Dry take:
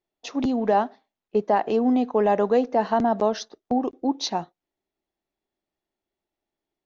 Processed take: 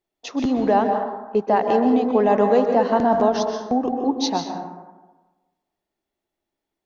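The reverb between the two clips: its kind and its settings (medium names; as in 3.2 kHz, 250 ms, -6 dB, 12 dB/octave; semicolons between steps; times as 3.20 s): plate-style reverb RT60 1.2 s, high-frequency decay 0.4×, pre-delay 115 ms, DRR 4 dB; trim +2 dB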